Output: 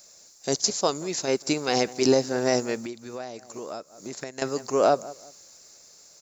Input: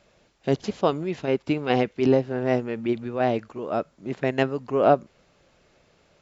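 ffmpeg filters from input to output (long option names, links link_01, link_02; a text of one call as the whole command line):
ffmpeg -i in.wav -filter_complex "[0:a]dynaudnorm=framelen=320:gausssize=9:maxgain=11.5dB,lowshelf=frequency=230:gain=-11.5,asplit=2[link_01][link_02];[link_02]adelay=180,lowpass=frequency=1600:poles=1,volume=-21.5dB,asplit=2[link_03][link_04];[link_04]adelay=180,lowpass=frequency=1600:poles=1,volume=0.31[link_05];[link_01][link_03][link_05]amix=inputs=3:normalize=0,asettb=1/sr,asplit=3[link_06][link_07][link_08];[link_06]atrim=end=2.754[link_09];[link_07]atrim=start=2.75:end=4.42,asetpts=PTS-STARTPTS,afade=type=in:duration=0.004:curve=qsin,afade=type=out:start_time=1.666:duration=0.004:curve=qsin,acompressor=threshold=-32dB:ratio=12[link_10];[link_08]atrim=start=4.416[link_11];[link_09][link_10]acrossfade=duration=0.004:curve1=hsin:curve2=qsin[link_12];[link_12][link_11]acrossfade=duration=0.004:curve1=qsin:curve2=hsin,aexciter=amount=12.4:drive=7.6:freq=4700,alimiter=level_in=7dB:limit=-1dB:release=50:level=0:latency=1,volume=-8dB" out.wav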